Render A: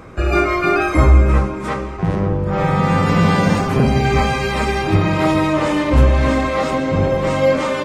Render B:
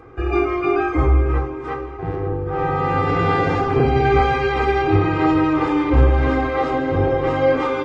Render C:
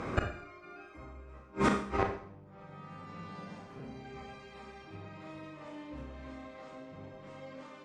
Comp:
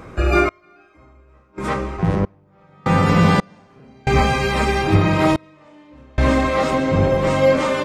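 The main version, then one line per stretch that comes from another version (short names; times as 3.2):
A
0.49–1.58 from C
2.25–2.86 from C
3.4–4.07 from C
5.36–6.18 from C
not used: B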